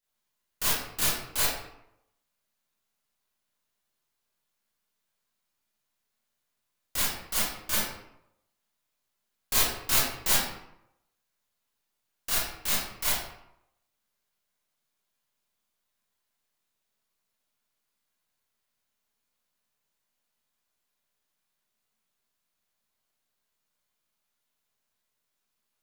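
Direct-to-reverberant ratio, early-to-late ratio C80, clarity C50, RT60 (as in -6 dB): -9.0 dB, 4.0 dB, 0.0 dB, 0.80 s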